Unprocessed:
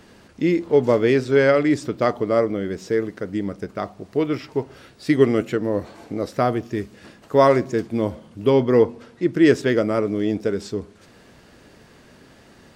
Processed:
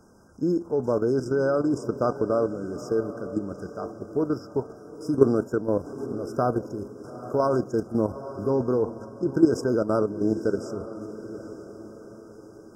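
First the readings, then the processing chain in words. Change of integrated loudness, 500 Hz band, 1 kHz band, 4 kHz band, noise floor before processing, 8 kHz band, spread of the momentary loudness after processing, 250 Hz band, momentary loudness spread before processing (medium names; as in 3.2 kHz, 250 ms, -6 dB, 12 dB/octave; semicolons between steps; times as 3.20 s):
-5.5 dB, -5.5 dB, -6.0 dB, under -10 dB, -50 dBFS, no reading, 17 LU, -4.5 dB, 13 LU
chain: level held to a coarse grid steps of 11 dB; echo that smears into a reverb 879 ms, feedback 45%, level -13 dB; FFT band-reject 1.6–4.9 kHz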